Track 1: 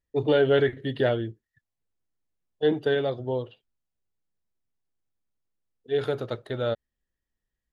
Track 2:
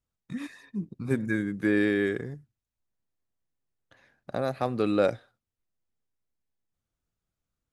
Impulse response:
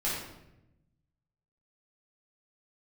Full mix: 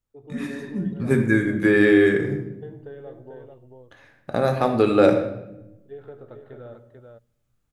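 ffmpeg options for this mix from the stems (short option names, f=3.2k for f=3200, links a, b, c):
-filter_complex "[0:a]lowpass=1.6k,acompressor=threshold=-28dB:ratio=6,volume=-18dB,asplit=3[a][b][c];[b]volume=-12.5dB[d];[c]volume=-4dB[e];[1:a]volume=-1.5dB,asplit=2[f][g];[g]volume=-8.5dB[h];[2:a]atrim=start_sample=2205[i];[d][h]amix=inputs=2:normalize=0[j];[j][i]afir=irnorm=-1:irlink=0[k];[e]aecho=0:1:441:1[l];[a][f][k][l]amix=inputs=4:normalize=0,equalizer=f=4.8k:t=o:w=0.77:g=-2.5,dynaudnorm=f=120:g=7:m=7dB"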